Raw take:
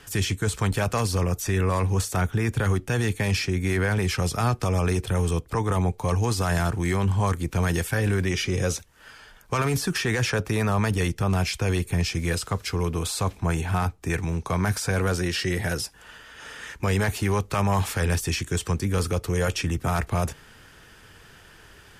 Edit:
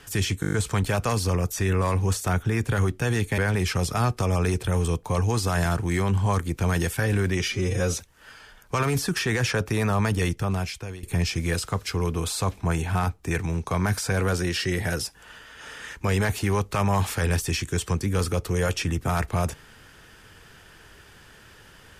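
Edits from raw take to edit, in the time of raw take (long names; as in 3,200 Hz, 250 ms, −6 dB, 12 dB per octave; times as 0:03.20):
0:00.41: stutter 0.02 s, 7 plays
0:03.26–0:03.81: remove
0:05.46–0:05.97: remove
0:08.42–0:08.72: time-stretch 1.5×
0:11.09–0:11.82: fade out, to −19.5 dB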